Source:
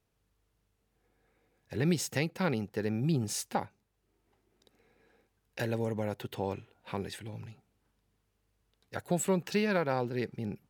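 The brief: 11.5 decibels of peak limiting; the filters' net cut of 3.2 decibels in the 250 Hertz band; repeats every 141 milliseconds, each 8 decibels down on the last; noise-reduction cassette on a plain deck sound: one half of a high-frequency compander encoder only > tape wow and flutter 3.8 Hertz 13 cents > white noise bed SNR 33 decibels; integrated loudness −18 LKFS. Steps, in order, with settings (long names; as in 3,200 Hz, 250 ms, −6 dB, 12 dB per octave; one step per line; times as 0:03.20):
parametric band 250 Hz −5 dB
brickwall limiter −27 dBFS
repeating echo 141 ms, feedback 40%, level −8 dB
one half of a high-frequency compander encoder only
tape wow and flutter 3.8 Hz 13 cents
white noise bed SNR 33 dB
level +20.5 dB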